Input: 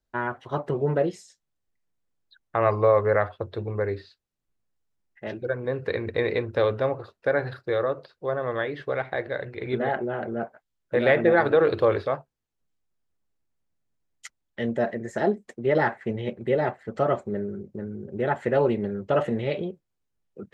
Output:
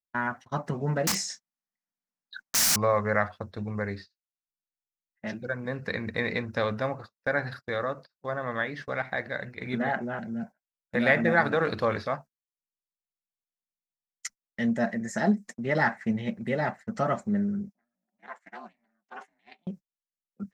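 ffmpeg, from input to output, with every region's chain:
-filter_complex "[0:a]asettb=1/sr,asplit=3[a][b][c];[a]atrim=end=1.074[d];[b]atrim=start=1.07:end=2.76,asetpts=PTS-STARTPTS,afade=t=in:d=0.004:c=qsin,afade=t=out:st=1.686:d=0.004:c=qsin,asplit=2[e][f];[f]highpass=f=720:p=1,volume=30dB,asoftclip=type=tanh:threshold=-8dB[g];[e][g]amix=inputs=2:normalize=0,lowpass=f=1k:p=1,volume=-6dB,aeval=exprs='(mod(15.8*val(0)+1,2)-1)/15.8':c=same,asplit=2[h][i];[i]adelay=25,volume=-8.5dB[j];[h][j]amix=inputs=2:normalize=0,atrim=end_sample=74529[k];[c]atrim=start=2.756[l];[d][k]acrossfade=d=0.004:c1=hsin:c2=qsin[m];[m][l]acrossfade=d=0.004:c1=qsin:c2=hsin,asettb=1/sr,asplit=3[n][o][p];[n]atrim=end=10.194[q];[o]atrim=start=10.19:end=10.95,asetpts=PTS-STARTPTS,afade=t=in:d=0.004:c=qsin,afade=t=out:st=0.756:d=0.004:c=qsin,acrossover=split=280|3000[r][s][t];[s]acompressor=threshold=-46dB:ratio=2.5:attack=3.2:release=140:knee=2.83:detection=peak[u];[r][u][t]amix=inputs=3:normalize=0,asuperstop=centerf=1200:order=8:qfactor=6[v];[p]atrim=start=10.946[w];[q][v]acrossfade=d=0.004:c1=hsin:c2=qsin[x];[x][w]acrossfade=d=0.004:c1=qsin:c2=hsin,asettb=1/sr,asplit=3[y][z][aa];[y]atrim=end=17.694[ab];[z]atrim=start=17.69:end=19.67,asetpts=PTS-STARTPTS,afade=t=in:d=0.004:c=qsin,afade=t=out:st=1.976:d=0.004:c=qsin,highpass=f=640:w=0.5412,highpass=f=640:w=1.3066,acompressor=threshold=-40dB:ratio=2:attack=3.2:release=140:knee=1:detection=peak,aeval=exprs='val(0)*sin(2*PI*180*n/s)':c=same[ac];[aa]atrim=start=19.666[ad];[ab][ac]acrossfade=d=0.004:c1=hsin:c2=qsin[ae];[ae][ad]acrossfade=d=0.004:c1=qsin:c2=hsin,firequalizer=gain_entry='entry(130,0);entry(200,11);entry(360,-8);entry(690,1);entry(1900,6);entry(3200,0);entry(5500,15);entry(8100,10)':delay=0.05:min_phase=1,agate=range=-26dB:threshold=-38dB:ratio=16:detection=peak,volume=-3.5dB"

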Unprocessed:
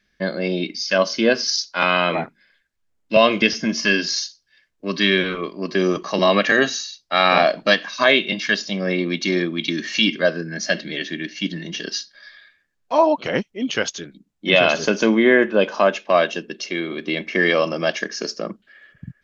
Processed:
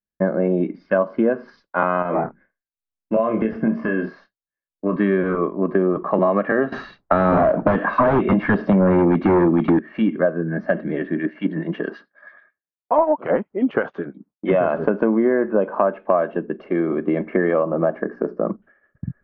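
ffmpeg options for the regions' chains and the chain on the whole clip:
-filter_complex "[0:a]asettb=1/sr,asplit=3[a][b][c];[a]atrim=end=2.024[d];[b]atrim=start=2.02:end=4.96,asetpts=PTS-STARTPTS,afade=t=in:d=0.004:c=qsin,afade=t=out:st=2.936:d=0.004:c=qsin,acompressor=threshold=-22dB:ratio=3:attack=3.2:release=140:knee=1:detection=peak,asplit=2[e][f];[f]adelay=27,volume=-6dB[g];[e][g]amix=inputs=2:normalize=0,atrim=end_sample=129654[h];[c]atrim=start=4.956[i];[d][h]acrossfade=d=0.004:c1=hsin:c2=qsin[j];[j][i]acrossfade=d=0.004:c1=qsin:c2=hsin,asettb=1/sr,asplit=3[k][l][m];[k]atrim=end=6.724[n];[l]atrim=start=6.72:end=9.79,asetpts=PTS-STARTPTS,afade=t=in:d=0.004:c=qsin,afade=t=out:st=3.066:d=0.004:c=qsin,acrossover=split=420|3000[o][p][q];[p]acompressor=threshold=-24dB:ratio=3:attack=3.2:release=140:knee=2.83:detection=peak[r];[o][r][q]amix=inputs=3:normalize=0,aeval=exprs='0.562*sin(PI/2*4.47*val(0)/0.562)':c=same[s];[m]atrim=start=9.786[t];[n][s]acrossfade=d=0.004:c1=hsin:c2=qsin[u];[u][t]acrossfade=d=0.004:c1=qsin:c2=hsin,asettb=1/sr,asplit=3[v][w][x];[v]atrim=end=11.164[y];[w]atrim=start=11.16:end=14.52,asetpts=PTS-STARTPTS,afade=t=in:d=0.004:c=qsin,afade=t=out:st=3.356:d=0.004:c=qsin,highpass=f=340:p=1,acontrast=90,acrossover=split=1700[z][aa];[z]aeval=exprs='val(0)*(1-0.7/2+0.7/2*cos(2*PI*9.2*n/s))':c=same[ab];[aa]aeval=exprs='val(0)*(1-0.7/2-0.7/2*cos(2*PI*9.2*n/s))':c=same[ac];[ab][ac]amix=inputs=2:normalize=0[ad];[x]atrim=start=14.516[ae];[y][ad]acrossfade=d=0.004:c1=hsin:c2=qsin[af];[af][ae]acrossfade=d=0.004:c1=qsin:c2=hsin,asettb=1/sr,asplit=3[ag][ah][ai];[ag]atrim=end=17.634[aj];[ah]atrim=start=17.63:end=18.46,asetpts=PTS-STARTPTS,afade=t=in:d=0.004:c=qsin,afade=t=out:st=0.826:d=0.004:c=qsin,equalizer=f=3.2k:t=o:w=1.6:g=-11,bandreject=f=60:t=h:w=6,bandreject=f=120:t=h:w=6,bandreject=f=180:t=h:w=6,bandreject=f=240:t=h:w=6,bandreject=f=300:t=h:w=6,bandreject=f=360:t=h:w=6,bandreject=f=420:t=h:w=6[ak];[ai]atrim=start=18.456[al];[aj][ak]acrossfade=d=0.004:c1=hsin:c2=qsin[am];[am][al]acrossfade=d=0.004:c1=qsin:c2=hsin,lowpass=f=1.3k:w=0.5412,lowpass=f=1.3k:w=1.3066,agate=range=-33dB:threshold=-48dB:ratio=3:detection=peak,acompressor=threshold=-22dB:ratio=6,volume=7.5dB"

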